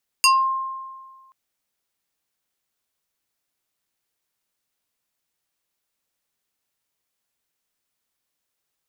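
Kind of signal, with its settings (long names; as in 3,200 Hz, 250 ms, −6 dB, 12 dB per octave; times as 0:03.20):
two-operator FM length 1.08 s, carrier 1,060 Hz, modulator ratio 3.59, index 2.4, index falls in 0.25 s exponential, decay 1.59 s, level −10.5 dB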